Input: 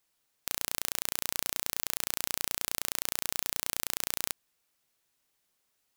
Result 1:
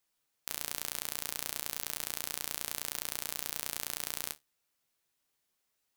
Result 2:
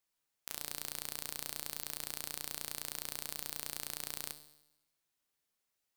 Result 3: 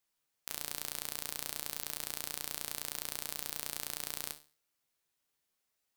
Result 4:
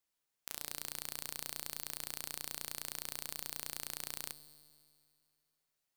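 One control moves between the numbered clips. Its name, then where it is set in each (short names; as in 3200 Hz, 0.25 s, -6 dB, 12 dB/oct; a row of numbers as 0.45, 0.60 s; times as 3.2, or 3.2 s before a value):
resonator, decay: 0.16, 0.92, 0.38, 2.2 s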